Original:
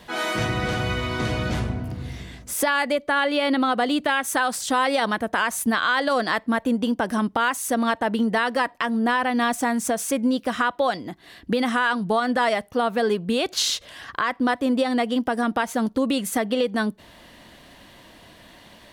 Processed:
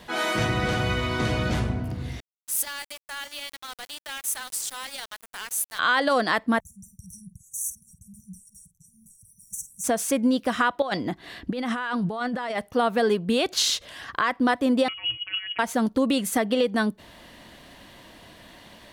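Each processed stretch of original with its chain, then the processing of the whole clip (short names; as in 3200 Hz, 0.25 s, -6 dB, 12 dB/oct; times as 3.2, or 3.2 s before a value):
2.2–5.79 pre-emphasis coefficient 0.97 + sample gate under -36 dBFS
6.6–9.84 brick-wall FIR band-stop 180–5600 Hz + doubler 50 ms -12.5 dB
10.82–12.58 high shelf 7200 Hz -8 dB + negative-ratio compressor -28 dBFS
14.88–15.59 negative-ratio compressor -28 dBFS, ratio -0.5 + robotiser 199 Hz + inverted band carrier 3100 Hz
whole clip: dry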